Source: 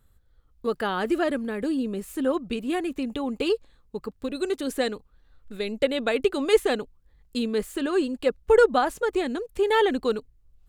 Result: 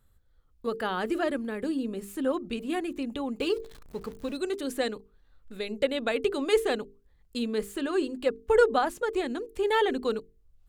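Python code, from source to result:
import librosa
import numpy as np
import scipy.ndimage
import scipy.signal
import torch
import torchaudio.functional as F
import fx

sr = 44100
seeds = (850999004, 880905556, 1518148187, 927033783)

y = fx.zero_step(x, sr, step_db=-41.0, at=(3.4, 4.37))
y = fx.hum_notches(y, sr, base_hz=50, count=9)
y = y * 10.0 ** (-3.0 / 20.0)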